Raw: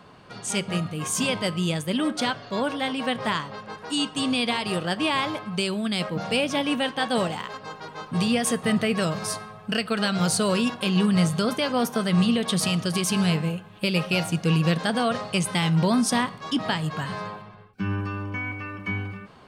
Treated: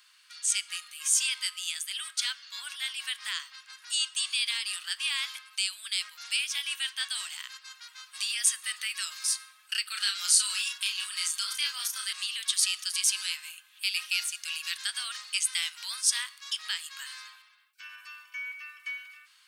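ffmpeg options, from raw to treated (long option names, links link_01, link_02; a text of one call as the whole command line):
ffmpeg -i in.wav -filter_complex "[0:a]asettb=1/sr,asplit=3[link_01][link_02][link_03];[link_01]atrim=end=9.864[link_04];[link_02]atrim=start=9.86:end=12.13,asetpts=PTS-STARTPTS,afade=type=in:duration=0.004:curve=qsin,afade=type=out:start_time=2.266:duration=0.004:curve=qsin,asplit=2[link_05][link_06];[link_06]adelay=34,volume=-3.5dB[link_07];[link_05][link_07]amix=inputs=2:normalize=0,atrim=end_sample=100107[link_08];[link_03]atrim=start=12.126[link_09];[link_04][link_08]acrossfade=duration=0.004:curve1=hsin:curve2=qsin[link_10];[link_10][link_09]acrossfade=duration=0.004:curve1=qsin:curve2=hsin,highpass=frequency=1400:width=0.5412,highpass=frequency=1400:width=1.3066,acrossover=split=9700[link_11][link_12];[link_12]acompressor=threshold=-54dB:ratio=4:attack=1:release=60[link_13];[link_11][link_13]amix=inputs=2:normalize=0,aderivative,volume=6dB" out.wav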